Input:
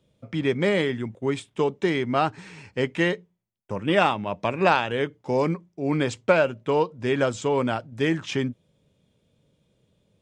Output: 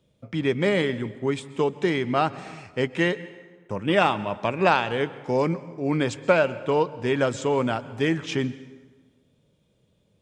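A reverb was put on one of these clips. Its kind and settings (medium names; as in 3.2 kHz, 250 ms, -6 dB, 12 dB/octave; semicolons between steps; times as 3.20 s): plate-style reverb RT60 1.4 s, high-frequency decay 0.7×, pre-delay 110 ms, DRR 16.5 dB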